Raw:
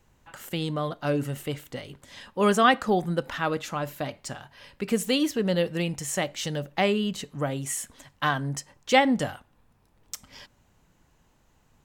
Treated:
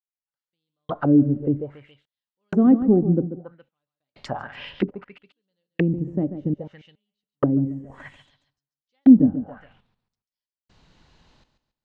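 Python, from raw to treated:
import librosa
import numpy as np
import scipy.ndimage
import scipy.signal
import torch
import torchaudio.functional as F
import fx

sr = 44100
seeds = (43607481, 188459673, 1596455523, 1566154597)

p1 = fx.step_gate(x, sr, bpm=101, pattern='......xxxxx', floor_db=-60.0, edge_ms=4.5)
p2 = p1 + fx.echo_feedback(p1, sr, ms=139, feedback_pct=32, wet_db=-11.0, dry=0)
p3 = fx.envelope_lowpass(p2, sr, base_hz=290.0, top_hz=4600.0, q=3.2, full_db=-28.0, direction='down')
y = F.gain(torch.from_numpy(p3), 5.0).numpy()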